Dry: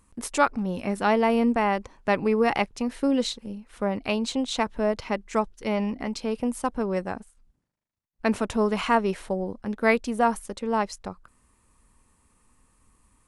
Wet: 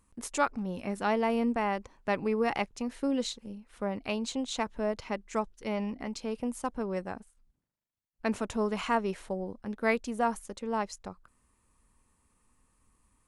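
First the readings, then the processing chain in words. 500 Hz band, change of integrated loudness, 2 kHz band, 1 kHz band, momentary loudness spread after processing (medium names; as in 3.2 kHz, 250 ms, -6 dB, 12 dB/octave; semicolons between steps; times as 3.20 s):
-6.5 dB, -6.5 dB, -6.5 dB, -6.5 dB, 9 LU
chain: dynamic bell 6.8 kHz, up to +5 dB, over -56 dBFS, Q 4.4; trim -6.5 dB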